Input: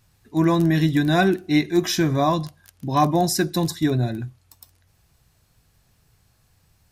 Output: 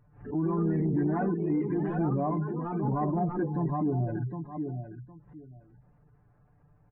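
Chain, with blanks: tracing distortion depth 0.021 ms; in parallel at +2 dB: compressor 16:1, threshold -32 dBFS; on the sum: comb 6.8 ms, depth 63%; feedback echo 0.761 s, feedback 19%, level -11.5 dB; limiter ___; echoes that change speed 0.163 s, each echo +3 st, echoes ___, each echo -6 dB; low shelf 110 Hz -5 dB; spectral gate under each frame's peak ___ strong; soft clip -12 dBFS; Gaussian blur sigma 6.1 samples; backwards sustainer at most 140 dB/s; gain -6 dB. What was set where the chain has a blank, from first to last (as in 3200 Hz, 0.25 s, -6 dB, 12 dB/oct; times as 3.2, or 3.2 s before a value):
-13 dBFS, 2, -25 dB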